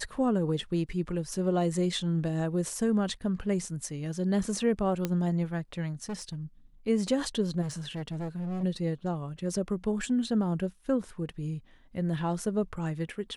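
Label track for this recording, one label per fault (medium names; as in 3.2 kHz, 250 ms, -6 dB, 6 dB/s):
5.050000	5.050000	pop -15 dBFS
6.090000	6.350000	clipped -31.5 dBFS
7.610000	8.640000	clipped -31 dBFS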